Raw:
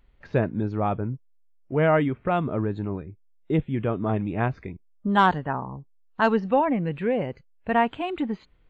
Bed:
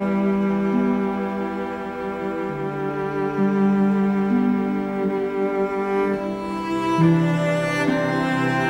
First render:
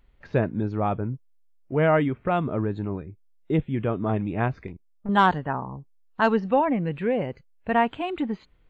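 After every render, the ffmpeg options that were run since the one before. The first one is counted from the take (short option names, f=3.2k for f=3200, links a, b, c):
-filter_complex "[0:a]asettb=1/sr,asplit=3[a][b][c];[a]atrim=end=4.674[d];[b]atrim=start=4.67:end=5.09,asetpts=PTS-STARTPTS,afade=t=in:d=0.004:c=qsin,afade=t=out:st=0.416:d=0.004:c=qsin,aeval=exprs='(tanh(31.6*val(0)+0.55)-tanh(0.55))/31.6':c=same[e];[c]atrim=start=5.086[f];[d][e]acrossfade=d=0.004:c1=hsin:c2=qsin[g];[g][f]acrossfade=d=0.004:c1=qsin:c2=hsin"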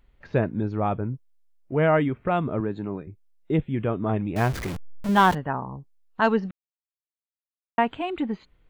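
-filter_complex "[0:a]asettb=1/sr,asplit=3[a][b][c];[a]atrim=end=2.604[d];[b]atrim=start=2.6:end=3.07,asetpts=PTS-STARTPTS,afade=t=in:d=0.004:c=qsin,afade=t=out:st=0.466:d=0.004:c=qsin,highpass=140[e];[c]atrim=start=3.066[f];[d][e]acrossfade=d=0.004:c1=hsin:c2=qsin[g];[g][f]acrossfade=d=0.004:c1=qsin:c2=hsin,asettb=1/sr,asplit=3[h][i][j];[h]atrim=end=4.364[k];[i]atrim=start=4.36:end=5.35,asetpts=PTS-STARTPTS,afade=t=in:d=0.004:c=qsin,afade=t=out:st=0.986:d=0.004:c=qsin,aeval=exprs='val(0)+0.5*0.0422*sgn(val(0))':c=same[l];[j]atrim=start=5.346[m];[k][l]acrossfade=d=0.004:c1=hsin:c2=qsin[n];[n][m]acrossfade=d=0.004:c1=qsin:c2=hsin,asplit=3[o][p][q];[o]atrim=end=6.51,asetpts=PTS-STARTPTS,afade=t=out:st=6.506:d=0.004:c=hsin[r];[p]atrim=start=6.51:end=7.78,asetpts=PTS-STARTPTS,volume=0[s];[q]atrim=start=7.78,asetpts=PTS-STARTPTS,afade=t=in:d=0.004:c=hsin[t];[r][s][t]concat=n=3:v=0:a=1"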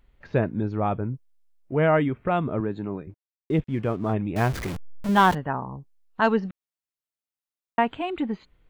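-filter_complex "[0:a]asplit=3[a][b][c];[a]afade=t=out:st=3.09:d=0.02[d];[b]aeval=exprs='sgn(val(0))*max(abs(val(0))-0.00316,0)':c=same,afade=t=in:st=3.09:d=0.02,afade=t=out:st=4.13:d=0.02[e];[c]afade=t=in:st=4.13:d=0.02[f];[d][e][f]amix=inputs=3:normalize=0"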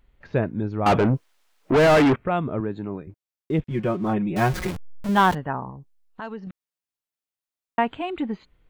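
-filter_complex "[0:a]asettb=1/sr,asplit=3[a][b][c];[a]atrim=end=0.864[d];[b]atrim=start=0.86:end=2.16,asetpts=PTS-STARTPTS,afade=t=in:d=0.004:c=qsin,afade=t=out:st=1.296:d=0.004:c=qsin,asplit=2[e][f];[f]highpass=f=720:p=1,volume=34dB,asoftclip=type=tanh:threshold=-9.5dB[g];[e][g]amix=inputs=2:normalize=0,lowpass=f=2.3k:p=1,volume=-6dB[h];[c]atrim=start=2.156[i];[d][h]acrossfade=d=0.004:c1=hsin:c2=qsin[j];[j][i]acrossfade=d=0.004:c1=qsin:c2=hsin,asettb=1/sr,asplit=3[k][l][m];[k]atrim=end=3.704[n];[l]atrim=start=3.7:end=4.71,asetpts=PTS-STARTPTS,afade=t=in:d=0.004:c=qsin,afade=t=out:st=1.006:d=0.004:c=qsin,aecho=1:1:5.5:0.99,atrim=end_sample=44541[o];[m]atrim=start=4.706[p];[n][o]acrossfade=d=0.004:c1=hsin:c2=qsin[q];[q][p]acrossfade=d=0.004:c1=qsin:c2=hsin,asettb=1/sr,asplit=3[r][s][t];[r]atrim=end=5.704[u];[s]atrim=start=5.7:end=6.47,asetpts=PTS-STARTPTS,afade=t=in:d=0.004:c=qsin,afade=t=out:st=0.766:d=0.004:c=qsin,acompressor=threshold=-37dB:ratio=2.5:attack=3.2:release=140:knee=1:detection=peak[v];[t]atrim=start=6.466[w];[u][v]acrossfade=d=0.004:c1=hsin:c2=qsin[x];[x][w]acrossfade=d=0.004:c1=qsin:c2=hsin"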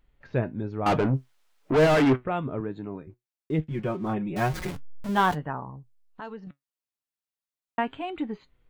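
-af "flanger=delay=6.3:depth=2:regen=69:speed=1.1:shape=triangular"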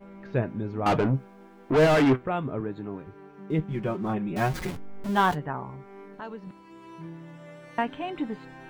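-filter_complex "[1:a]volume=-25dB[a];[0:a][a]amix=inputs=2:normalize=0"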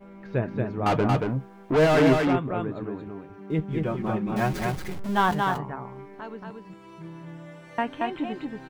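-af "aecho=1:1:229:0.668"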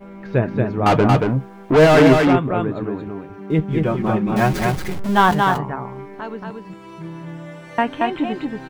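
-af "volume=8dB,alimiter=limit=-3dB:level=0:latency=1"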